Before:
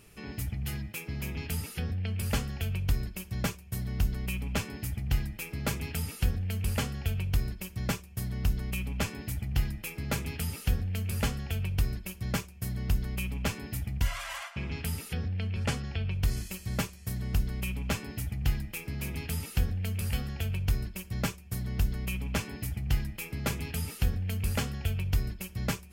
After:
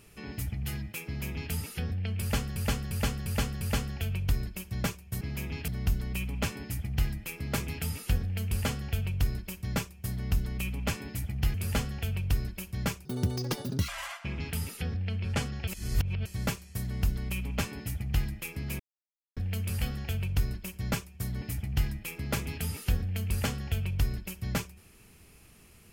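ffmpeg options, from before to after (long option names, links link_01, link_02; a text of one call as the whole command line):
ffmpeg -i in.wav -filter_complex "[0:a]asplit=15[link_01][link_02][link_03][link_04][link_05][link_06][link_07][link_08][link_09][link_10][link_11][link_12][link_13][link_14][link_15];[link_01]atrim=end=2.562[link_16];[link_02]atrim=start=2.208:end=2.562[link_17];[link_03]atrim=start=2.208:end=2.562[link_18];[link_04]atrim=start=2.208:end=2.562[link_19];[link_05]atrim=start=2.208:end=3.812[link_20];[link_06]atrim=start=1.058:end=1.532[link_21];[link_07]atrim=start=3.808:end=9.672[link_22];[link_08]atrim=start=11.018:end=12.534[link_23];[link_09]atrim=start=12.53:end=14.2,asetpts=PTS-STARTPTS,asetrate=88200,aresample=44100[link_24];[link_10]atrim=start=14.196:end=15.992[link_25];[link_11]atrim=start=15.988:end=16.572,asetpts=PTS-STARTPTS,areverse[link_26];[link_12]atrim=start=16.568:end=19.11,asetpts=PTS-STARTPTS,afade=type=out:start_time=2.538:duration=0.004:curve=hsin[link_27];[link_13]atrim=start=19.11:end=19.68,asetpts=PTS-STARTPTS,volume=0[link_28];[link_14]atrim=start=19.68:end=21.732,asetpts=PTS-STARTPTS,afade=type=in:duration=0.004:curve=hsin[link_29];[link_15]atrim=start=22.548[link_30];[link_16][link_17]acrossfade=duration=0.004:curve1=hsin:curve2=hsin[link_31];[link_31][link_18]acrossfade=duration=0.004:curve1=hsin:curve2=hsin[link_32];[link_32][link_19]acrossfade=duration=0.004:curve1=hsin:curve2=hsin[link_33];[link_33][link_20]acrossfade=duration=0.004:curve1=hsin:curve2=hsin[link_34];[link_34][link_21]acrossfade=duration=0.004:curve1=hsin:curve2=hsin[link_35];[link_35][link_22]acrossfade=duration=0.004:curve1=hsin:curve2=hsin[link_36];[link_36][link_23]acrossfade=duration=0.004:curve1=hsin:curve2=hsin[link_37];[link_37][link_24]acrossfade=duration=0.004:curve1=hsin:curve2=hsin[link_38];[link_38][link_25]acrossfade=duration=0.004:curve1=hsin:curve2=hsin[link_39];[link_39][link_26]acrossfade=duration=0.004:curve1=hsin:curve2=hsin[link_40];[link_27][link_28][link_29]concat=n=3:v=0:a=1[link_41];[link_40][link_41]acrossfade=duration=0.004:curve1=hsin:curve2=hsin[link_42];[link_42][link_30]acrossfade=duration=0.004:curve1=hsin:curve2=hsin" out.wav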